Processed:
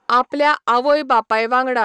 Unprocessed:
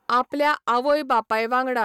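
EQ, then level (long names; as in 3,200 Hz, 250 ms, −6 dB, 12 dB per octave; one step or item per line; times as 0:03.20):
low-pass filter 7,700 Hz 24 dB per octave
parametric band 66 Hz −8.5 dB 2.7 octaves
+5.5 dB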